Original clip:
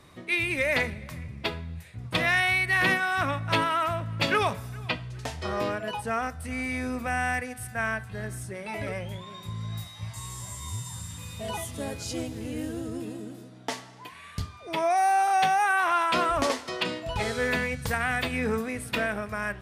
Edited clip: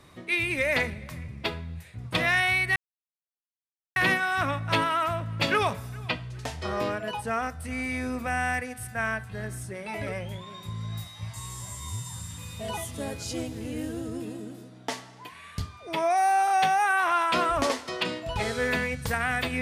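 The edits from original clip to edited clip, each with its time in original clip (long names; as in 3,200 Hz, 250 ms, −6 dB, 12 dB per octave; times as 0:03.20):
0:02.76: splice in silence 1.20 s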